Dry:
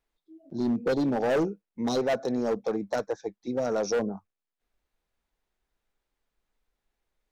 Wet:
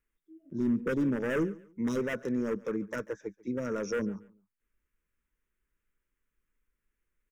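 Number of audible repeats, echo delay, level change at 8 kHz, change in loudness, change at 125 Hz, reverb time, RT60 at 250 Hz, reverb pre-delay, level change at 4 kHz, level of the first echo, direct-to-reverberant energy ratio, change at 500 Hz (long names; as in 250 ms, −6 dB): 2, 141 ms, can't be measured, −4.0 dB, −0.5 dB, no reverb audible, no reverb audible, no reverb audible, −10.5 dB, −21.5 dB, no reverb audible, −6.5 dB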